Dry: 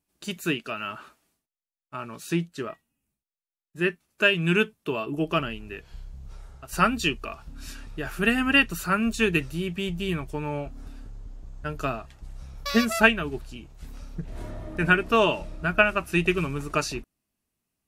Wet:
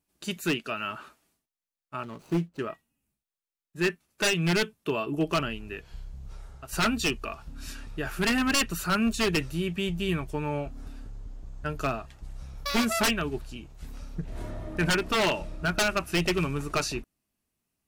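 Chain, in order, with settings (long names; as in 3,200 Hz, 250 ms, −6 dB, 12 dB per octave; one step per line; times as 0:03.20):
0:02.03–0:02.59: running median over 25 samples
wave folding −18 dBFS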